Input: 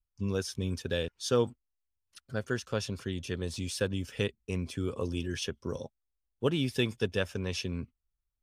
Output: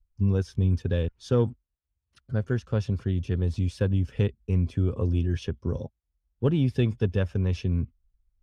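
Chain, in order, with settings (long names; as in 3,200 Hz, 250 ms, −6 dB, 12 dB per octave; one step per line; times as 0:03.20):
RIAA equalisation playback
harmonic generator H 5 −33 dB, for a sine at −10 dBFS
level −1.5 dB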